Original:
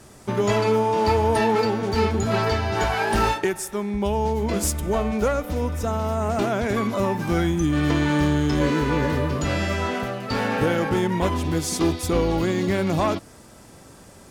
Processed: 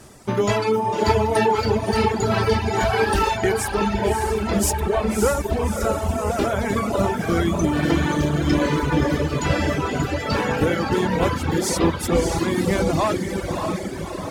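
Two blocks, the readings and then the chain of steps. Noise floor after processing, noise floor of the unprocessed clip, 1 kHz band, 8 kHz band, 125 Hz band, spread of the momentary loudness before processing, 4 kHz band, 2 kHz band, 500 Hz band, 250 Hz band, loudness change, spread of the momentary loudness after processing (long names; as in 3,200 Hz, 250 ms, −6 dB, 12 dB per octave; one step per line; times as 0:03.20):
−29 dBFS, −47 dBFS, +2.0 dB, +3.0 dB, +1.5 dB, 5 LU, +2.0 dB, +2.0 dB, +2.0 dB, +1.0 dB, +1.5 dB, 4 LU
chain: on a send: feedback delay with all-pass diffusion 608 ms, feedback 65%, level −3.5 dB
on the sum: reverb reduction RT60 1.7 s
level +2.5 dB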